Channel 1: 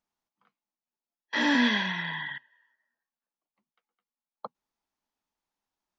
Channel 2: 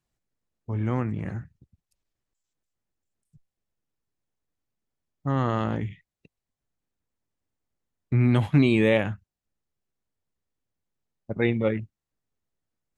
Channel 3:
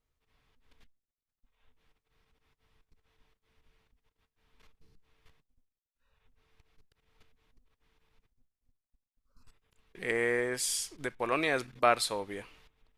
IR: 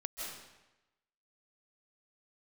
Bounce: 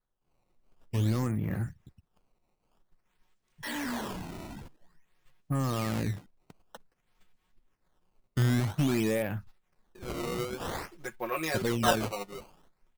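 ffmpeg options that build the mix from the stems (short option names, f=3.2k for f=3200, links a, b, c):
-filter_complex "[0:a]acontrast=38,asoftclip=type=tanh:threshold=-18dB,adelay=2300,volume=-12.5dB[a];[1:a]alimiter=limit=-18dB:level=0:latency=1:release=453,asoftclip=type=tanh:threshold=-22.5dB,adelay=250,volume=2.5dB[b];[2:a]aecho=1:1:5.5:0.94,flanger=delay=7.5:depth=5.4:regen=29:speed=1.7:shape=triangular,volume=-2dB[c];[a][b][c]amix=inputs=3:normalize=0,acrusher=samples=15:mix=1:aa=0.000001:lfo=1:lforange=24:lforate=0.51"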